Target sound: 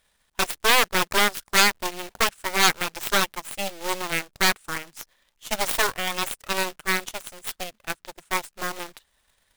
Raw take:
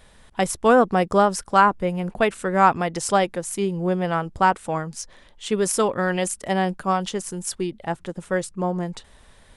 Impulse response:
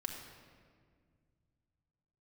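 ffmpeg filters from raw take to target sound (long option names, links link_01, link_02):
-af "aeval=exprs='0.668*(cos(1*acos(clip(val(0)/0.668,-1,1)))-cos(1*PI/2))+0.15*(cos(3*acos(clip(val(0)/0.668,-1,1)))-cos(3*PI/2))+0.335*(cos(6*acos(clip(val(0)/0.668,-1,1)))-cos(6*PI/2))':channel_layout=same,acrusher=bits=2:mode=log:mix=0:aa=0.000001,tiltshelf=frequency=850:gain=-5.5,volume=-7.5dB"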